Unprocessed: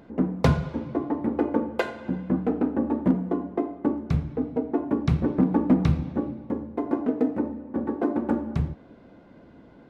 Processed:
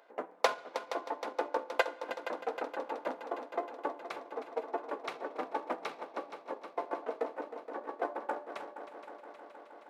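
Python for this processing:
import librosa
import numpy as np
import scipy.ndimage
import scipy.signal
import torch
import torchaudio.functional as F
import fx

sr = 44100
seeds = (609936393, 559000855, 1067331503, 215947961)

y = fx.transient(x, sr, attack_db=5, sustain_db=-6)
y = scipy.signal.sosfilt(scipy.signal.butter(4, 560.0, 'highpass', fs=sr, output='sos'), y)
y = fx.echo_heads(y, sr, ms=157, heads='second and third', feedback_pct=73, wet_db=-12)
y = F.gain(torch.from_numpy(y), -4.5).numpy()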